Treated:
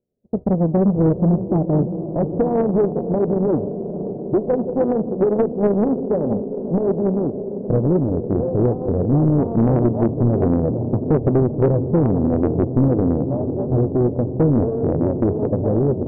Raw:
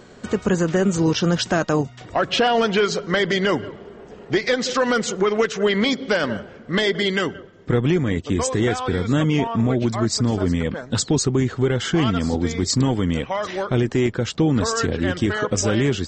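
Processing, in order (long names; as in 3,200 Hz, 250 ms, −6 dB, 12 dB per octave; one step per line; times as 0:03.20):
spectral envelope flattened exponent 0.6
automatic gain control gain up to 9 dB
noise gate −24 dBFS, range −32 dB
Butterworth low-pass 600 Hz 36 dB per octave
feedback delay with all-pass diffusion 515 ms, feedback 78%, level −11.5 dB
soft clipping −7 dBFS, distortion −19 dB
highs frequency-modulated by the lows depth 0.76 ms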